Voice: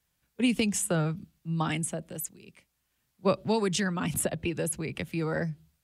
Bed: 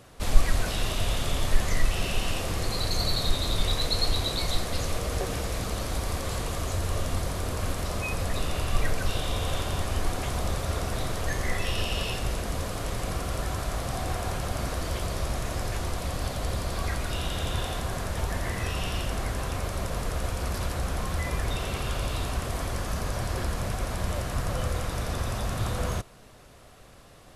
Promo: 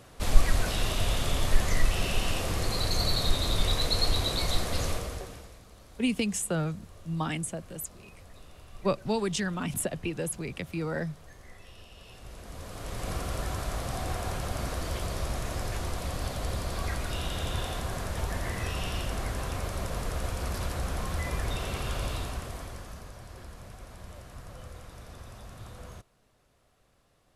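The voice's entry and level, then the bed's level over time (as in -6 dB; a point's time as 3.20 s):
5.60 s, -2.0 dB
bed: 4.89 s -0.5 dB
5.62 s -22 dB
11.96 s -22 dB
13.11 s -2.5 dB
22.09 s -2.5 dB
23.17 s -16 dB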